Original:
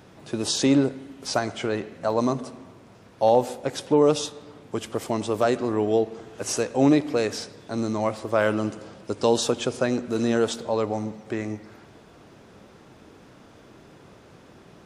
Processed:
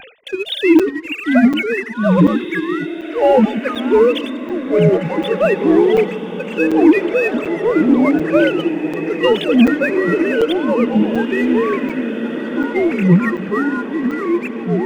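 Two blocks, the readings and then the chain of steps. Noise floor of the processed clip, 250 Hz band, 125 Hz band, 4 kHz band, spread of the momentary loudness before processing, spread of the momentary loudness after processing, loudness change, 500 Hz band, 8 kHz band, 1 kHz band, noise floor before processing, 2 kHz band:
-28 dBFS, +12.5 dB, +11.0 dB, +5.5 dB, 14 LU, 9 LU, +9.0 dB, +9.0 dB, under -10 dB, +6.0 dB, -51 dBFS, +14.5 dB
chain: sine-wave speech; band shelf 730 Hz -14 dB 2.3 oct; sample leveller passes 1; diffused feedback echo 1.969 s, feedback 41%, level -10.5 dB; in parallel at -7 dB: soft clip -28.5 dBFS, distortion -8 dB; on the sum: echoes that change speed 0.424 s, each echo -5 st, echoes 2; upward compressor, threshold -37 dBFS; low shelf 200 Hz +5.5 dB; gate with hold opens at -37 dBFS; maximiser +13 dB; crackling interface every 0.74 s, samples 256, zero, from 0.79; gain -1 dB

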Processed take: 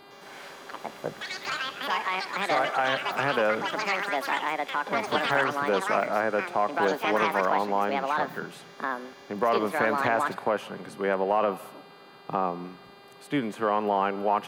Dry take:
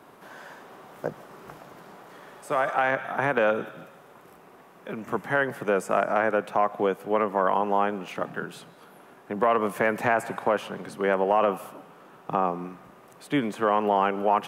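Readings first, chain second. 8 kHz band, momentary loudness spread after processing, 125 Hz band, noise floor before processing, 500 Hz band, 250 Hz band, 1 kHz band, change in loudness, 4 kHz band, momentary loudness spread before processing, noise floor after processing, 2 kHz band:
+2.5 dB, 14 LU, -2.5 dB, -52 dBFS, -2.0 dB, -1.5 dB, 0.0 dB, -1.0 dB, +8.5 dB, 21 LU, -50 dBFS, +1.5 dB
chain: buzz 400 Hz, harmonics 12, -51 dBFS -3 dB/oct; echoes that change speed 0.108 s, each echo +6 st, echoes 3; gain -2.5 dB

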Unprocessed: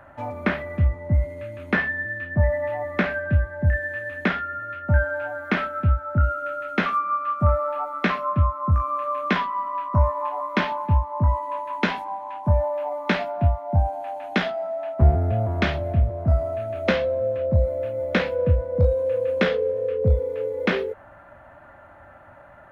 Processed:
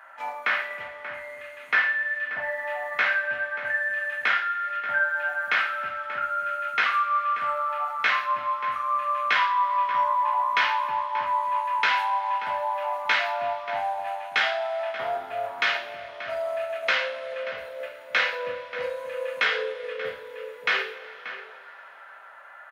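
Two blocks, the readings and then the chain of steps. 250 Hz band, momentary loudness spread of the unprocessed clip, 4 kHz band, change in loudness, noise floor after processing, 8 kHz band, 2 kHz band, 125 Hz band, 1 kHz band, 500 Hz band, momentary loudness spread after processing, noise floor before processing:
under -25 dB, 6 LU, +5.0 dB, -2.0 dB, -46 dBFS, n/a, +4.5 dB, under -35 dB, +2.5 dB, -7.5 dB, 13 LU, -48 dBFS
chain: Chebyshev high-pass 1400 Hz, order 2; in parallel at +0.5 dB: level quantiser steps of 21 dB; on the sum: outdoor echo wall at 100 m, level -11 dB; two-slope reverb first 0.45 s, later 4.1 s, from -22 dB, DRR -1 dB

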